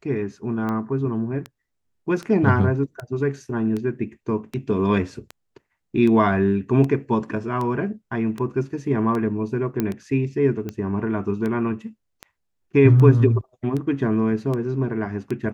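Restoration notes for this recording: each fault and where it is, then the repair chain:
tick 78 rpm -17 dBFS
9.8 pop -10 dBFS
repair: de-click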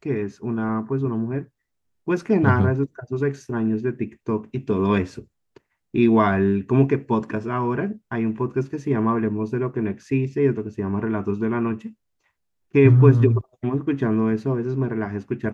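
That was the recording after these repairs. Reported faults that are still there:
none

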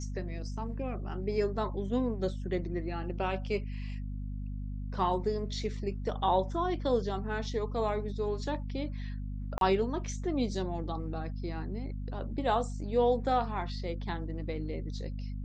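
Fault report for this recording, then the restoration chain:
hum 50 Hz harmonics 5 -37 dBFS
9.58–9.61 gap 32 ms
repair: de-hum 50 Hz, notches 5; interpolate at 9.58, 32 ms

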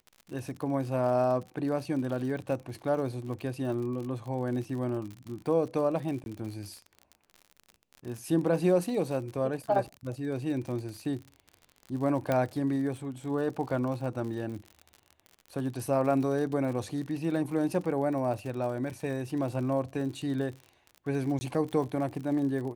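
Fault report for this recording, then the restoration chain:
crackle 57/s -37 dBFS
6.24–6.26 gap 21 ms
12.32 pop -15 dBFS
21.39–21.41 gap 20 ms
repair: de-click; interpolate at 6.24, 21 ms; interpolate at 21.39, 20 ms

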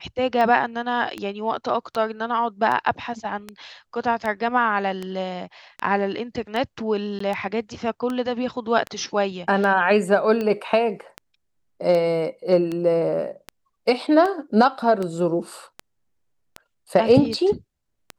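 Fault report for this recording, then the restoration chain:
tick 78 rpm -15 dBFS
7.19–7.2 gap 14 ms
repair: de-click; interpolate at 7.19, 14 ms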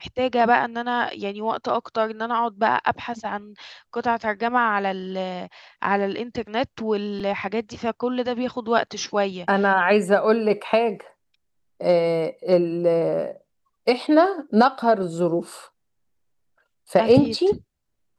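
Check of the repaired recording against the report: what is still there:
none

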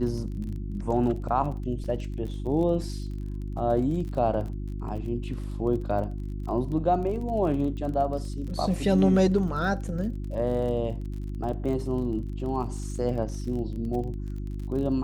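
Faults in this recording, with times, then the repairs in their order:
crackle 34/s -36 dBFS
hum 50 Hz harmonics 7 -33 dBFS
1.84–1.85 gap 5.6 ms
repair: de-click; de-hum 50 Hz, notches 7; interpolate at 1.84, 5.6 ms

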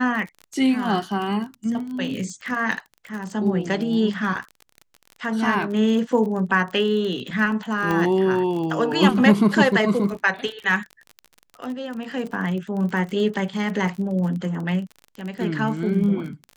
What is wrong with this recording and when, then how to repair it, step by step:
crackle 33/s -30 dBFS
7.91 pop -12 dBFS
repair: de-click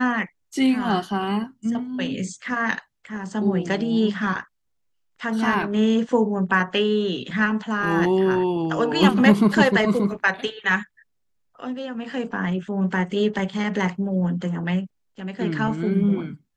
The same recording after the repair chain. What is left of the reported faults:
7.91 pop

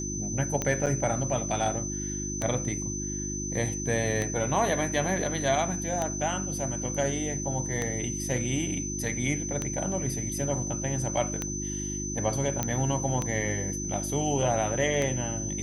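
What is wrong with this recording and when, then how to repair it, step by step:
hum 50 Hz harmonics 7 -35 dBFS
tick 33 1/3 rpm -14 dBFS
tone 6100 Hz -34 dBFS
0.86–0.87 gap 7.4 ms
12.63 pop -12 dBFS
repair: de-click; de-hum 50 Hz, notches 7; notch 6100 Hz, Q 30; interpolate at 0.86, 7.4 ms

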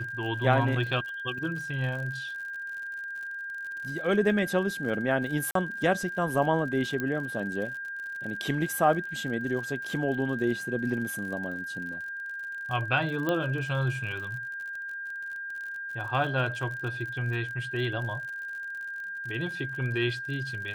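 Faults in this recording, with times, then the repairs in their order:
crackle 58/s -37 dBFS
tone 1600 Hz -34 dBFS
5.51–5.55 gap 43 ms
7 pop -18 dBFS
13.29 pop -15 dBFS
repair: de-click; notch 1600 Hz, Q 30; interpolate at 5.51, 43 ms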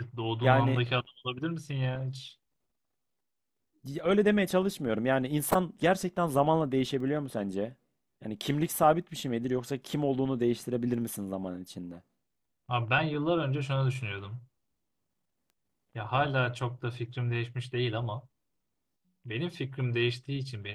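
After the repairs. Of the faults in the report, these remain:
7 pop
13.29 pop

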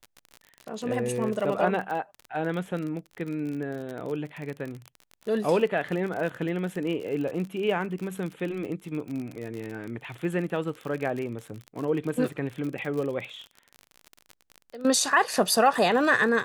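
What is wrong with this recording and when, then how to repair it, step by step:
crackle 44/s -32 dBFS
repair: de-click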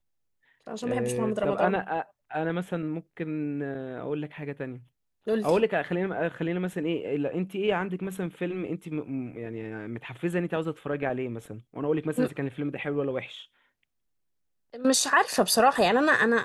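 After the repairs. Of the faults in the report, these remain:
none

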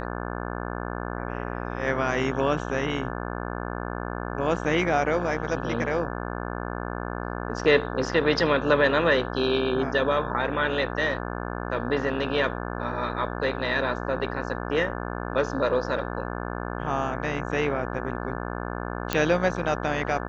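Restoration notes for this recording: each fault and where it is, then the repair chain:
buzz 60 Hz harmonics 29 -32 dBFS
19.13 pop -8 dBFS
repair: de-click; de-hum 60 Hz, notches 29

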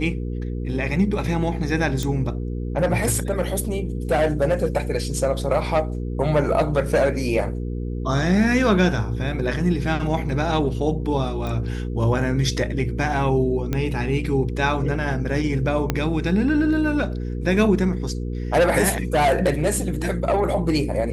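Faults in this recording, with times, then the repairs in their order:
hum 60 Hz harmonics 8 -27 dBFS
2.03 pop -12 dBFS
11.47 pop -17 dBFS
13.73 pop -11 dBFS
15.9 pop -6 dBFS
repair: de-click; de-hum 60 Hz, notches 8

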